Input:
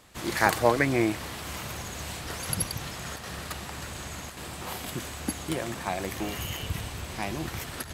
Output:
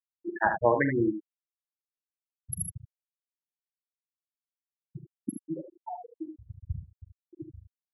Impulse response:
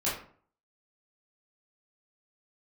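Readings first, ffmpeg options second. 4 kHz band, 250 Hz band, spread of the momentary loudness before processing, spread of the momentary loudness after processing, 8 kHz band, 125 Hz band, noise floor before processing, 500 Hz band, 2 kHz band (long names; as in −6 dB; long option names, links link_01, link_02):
below −40 dB, −2.0 dB, 13 LU, 23 LU, −9.0 dB, −6.0 dB, −40 dBFS, −1.5 dB, −5.0 dB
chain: -af "afftfilt=real='re*gte(hypot(re,im),0.224)':imag='im*gte(hypot(re,im),0.224)':win_size=1024:overlap=0.75,aecho=1:1:43|75:0.237|0.422,volume=-1dB"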